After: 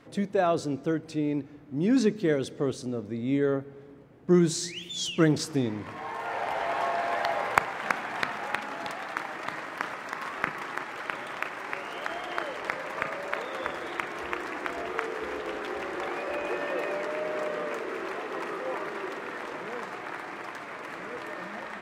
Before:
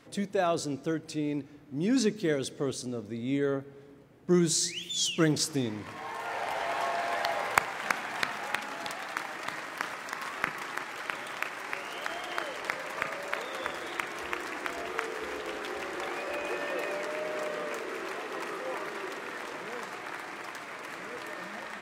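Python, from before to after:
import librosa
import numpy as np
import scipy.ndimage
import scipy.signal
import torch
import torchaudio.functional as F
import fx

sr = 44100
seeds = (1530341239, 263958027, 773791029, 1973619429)

y = fx.high_shelf(x, sr, hz=3300.0, db=-10.5)
y = F.gain(torch.from_numpy(y), 3.5).numpy()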